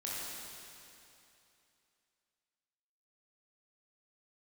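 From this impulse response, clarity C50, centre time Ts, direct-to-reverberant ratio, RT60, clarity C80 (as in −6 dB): −4.0 dB, 181 ms, −7.0 dB, 2.8 s, −2.0 dB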